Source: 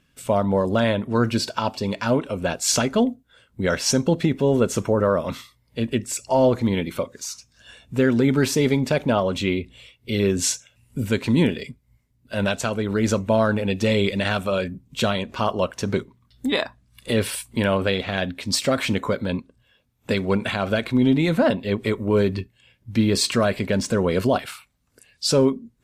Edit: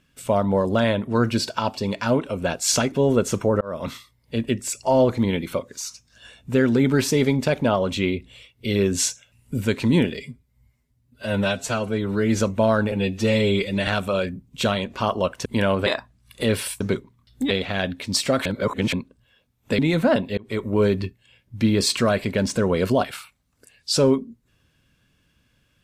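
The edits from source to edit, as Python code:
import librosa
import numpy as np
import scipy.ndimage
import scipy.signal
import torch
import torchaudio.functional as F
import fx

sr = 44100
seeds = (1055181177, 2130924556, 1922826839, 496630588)

y = fx.edit(x, sr, fx.cut(start_s=2.92, length_s=1.44),
    fx.fade_in_span(start_s=5.05, length_s=0.28),
    fx.stretch_span(start_s=11.63, length_s=1.47, factor=1.5),
    fx.stretch_span(start_s=13.62, length_s=0.64, factor=1.5),
    fx.swap(start_s=15.84, length_s=0.7, other_s=17.48, other_length_s=0.41),
    fx.reverse_span(start_s=18.84, length_s=0.47),
    fx.cut(start_s=20.17, length_s=0.96),
    fx.fade_in_span(start_s=21.72, length_s=0.27), tone=tone)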